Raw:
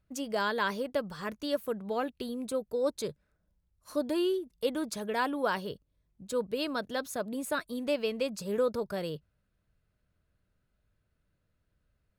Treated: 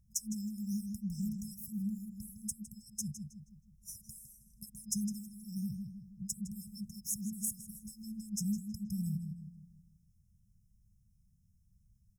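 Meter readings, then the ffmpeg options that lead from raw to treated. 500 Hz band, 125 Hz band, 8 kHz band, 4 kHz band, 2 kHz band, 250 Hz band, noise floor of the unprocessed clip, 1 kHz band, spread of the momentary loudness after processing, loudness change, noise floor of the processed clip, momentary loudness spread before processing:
under -40 dB, +6.5 dB, +6.5 dB, -12.5 dB, under -40 dB, -2.5 dB, -78 dBFS, under -40 dB, 14 LU, -7.0 dB, -70 dBFS, 7 LU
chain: -filter_complex "[0:a]asplit=2[a][b];[b]adelay=159,lowpass=f=3.8k:p=1,volume=-7dB,asplit=2[c][d];[d]adelay=159,lowpass=f=3.8k:p=1,volume=0.47,asplit=2[e][f];[f]adelay=159,lowpass=f=3.8k:p=1,volume=0.47,asplit=2[g][h];[h]adelay=159,lowpass=f=3.8k:p=1,volume=0.47,asplit=2[i][j];[j]adelay=159,lowpass=f=3.8k:p=1,volume=0.47,asplit=2[k][l];[l]adelay=159,lowpass=f=3.8k:p=1,volume=0.47[m];[a][c][e][g][i][k][m]amix=inputs=7:normalize=0,acompressor=threshold=-30dB:ratio=6,afftfilt=real='re*(1-between(b*sr/4096,220,5100))':imag='im*(1-between(b*sr/4096,220,5100))':win_size=4096:overlap=0.75,volume=7dB"

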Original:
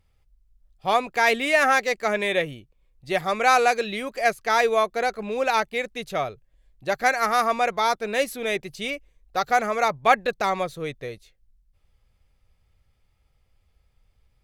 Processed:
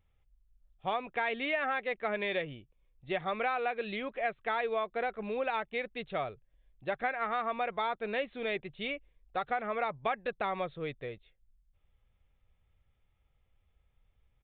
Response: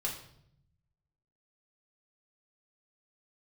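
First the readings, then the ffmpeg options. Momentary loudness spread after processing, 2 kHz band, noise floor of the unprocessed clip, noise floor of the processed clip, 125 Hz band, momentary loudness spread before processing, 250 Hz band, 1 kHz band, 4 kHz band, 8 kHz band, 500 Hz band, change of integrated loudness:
8 LU, -11.5 dB, -67 dBFS, -74 dBFS, -7.5 dB, 11 LU, -8.5 dB, -12.0 dB, -12.0 dB, under -40 dB, -10.0 dB, -11.0 dB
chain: -af "aresample=8000,aresample=44100,acompressor=threshold=-22dB:ratio=6,volume=-6.5dB"

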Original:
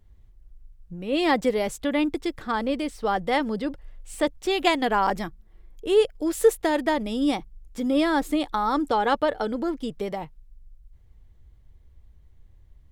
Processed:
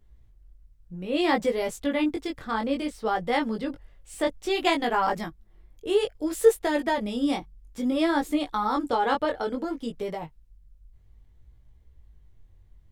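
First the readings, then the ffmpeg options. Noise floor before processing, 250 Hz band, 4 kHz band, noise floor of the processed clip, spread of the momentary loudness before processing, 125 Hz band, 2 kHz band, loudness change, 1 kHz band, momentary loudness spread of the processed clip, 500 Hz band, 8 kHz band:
-54 dBFS, -2.0 dB, -2.0 dB, -57 dBFS, 11 LU, -2.0 dB, -2.0 dB, -2.0 dB, -2.0 dB, 11 LU, -2.0 dB, -2.0 dB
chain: -af "flanger=delay=17:depth=5.4:speed=0.6,volume=1dB"

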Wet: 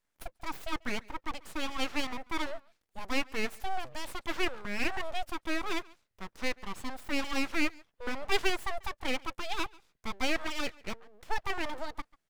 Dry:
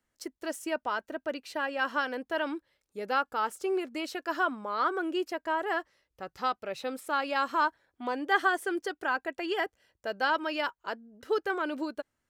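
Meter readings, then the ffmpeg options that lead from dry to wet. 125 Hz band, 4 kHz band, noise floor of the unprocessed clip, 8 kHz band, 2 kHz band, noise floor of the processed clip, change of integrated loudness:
n/a, +2.0 dB, -83 dBFS, +3.5 dB, -4.0 dB, -81 dBFS, -4.0 dB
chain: -filter_complex "[0:a]asplit=2[a][b];[b]adelay=140,highpass=300,lowpass=3.4k,asoftclip=type=hard:threshold=-21.5dB,volume=-23dB[c];[a][c]amix=inputs=2:normalize=0,aeval=exprs='abs(val(0))':c=same"

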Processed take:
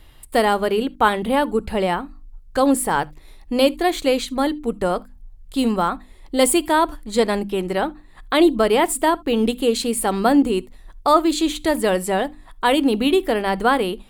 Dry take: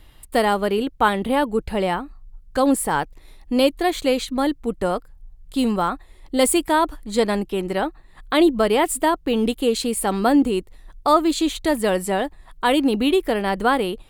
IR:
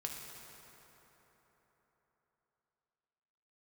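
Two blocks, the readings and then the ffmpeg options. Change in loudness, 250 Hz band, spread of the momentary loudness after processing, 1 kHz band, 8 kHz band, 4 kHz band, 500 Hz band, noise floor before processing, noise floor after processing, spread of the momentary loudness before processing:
+1.0 dB, +0.5 dB, 8 LU, +1.5 dB, +1.5 dB, +1.5 dB, +1.5 dB, -48 dBFS, -46 dBFS, 8 LU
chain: -filter_complex "[0:a]bandreject=f=50:t=h:w=6,bandreject=f=100:t=h:w=6,bandreject=f=150:t=h:w=6,bandreject=f=200:t=h:w=6,bandreject=f=250:t=h:w=6,bandreject=f=300:t=h:w=6,asplit=2[a][b];[1:a]atrim=start_sample=2205,atrim=end_sample=3528[c];[b][c]afir=irnorm=-1:irlink=0,volume=-12dB[d];[a][d]amix=inputs=2:normalize=0"

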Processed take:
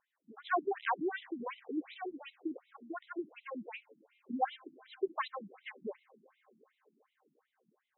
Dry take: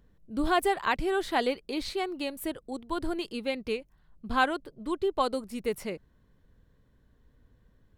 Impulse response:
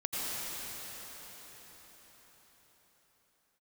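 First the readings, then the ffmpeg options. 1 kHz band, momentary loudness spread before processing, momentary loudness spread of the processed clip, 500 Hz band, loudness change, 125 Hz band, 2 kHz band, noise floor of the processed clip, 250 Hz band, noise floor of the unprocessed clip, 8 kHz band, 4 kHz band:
-7.5 dB, 10 LU, 15 LU, -10.0 dB, -9.0 dB, under -15 dB, -9.0 dB, -85 dBFS, -9.0 dB, -65 dBFS, under -35 dB, -15.0 dB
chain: -filter_complex "[0:a]aeval=exprs='0.251*(cos(1*acos(clip(val(0)/0.251,-1,1)))-cos(1*PI/2))+0.0355*(cos(6*acos(clip(val(0)/0.251,-1,1)))-cos(6*PI/2))':c=same,asplit=2[a][b];[1:a]atrim=start_sample=2205[c];[b][c]afir=irnorm=-1:irlink=0,volume=-29dB[d];[a][d]amix=inputs=2:normalize=0,afftfilt=real='re*between(b*sr/1024,230*pow(2900/230,0.5+0.5*sin(2*PI*2.7*pts/sr))/1.41,230*pow(2900/230,0.5+0.5*sin(2*PI*2.7*pts/sr))*1.41)':imag='im*between(b*sr/1024,230*pow(2900/230,0.5+0.5*sin(2*PI*2.7*pts/sr))/1.41,230*pow(2900/230,0.5+0.5*sin(2*PI*2.7*pts/sr))*1.41)':win_size=1024:overlap=0.75,volume=-2.5dB"

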